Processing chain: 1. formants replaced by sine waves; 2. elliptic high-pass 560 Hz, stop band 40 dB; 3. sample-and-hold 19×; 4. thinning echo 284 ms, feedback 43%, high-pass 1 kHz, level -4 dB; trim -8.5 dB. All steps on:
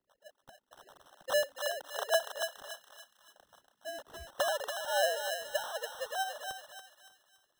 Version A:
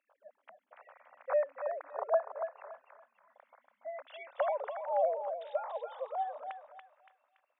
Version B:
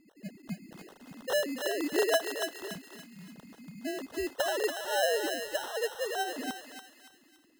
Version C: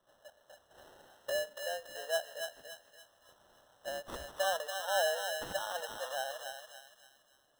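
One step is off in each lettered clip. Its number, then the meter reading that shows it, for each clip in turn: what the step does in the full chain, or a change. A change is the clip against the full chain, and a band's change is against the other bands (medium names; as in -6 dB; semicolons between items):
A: 3, loudness change -1.0 LU; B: 2, 250 Hz band +24.5 dB; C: 1, 250 Hz band +7.0 dB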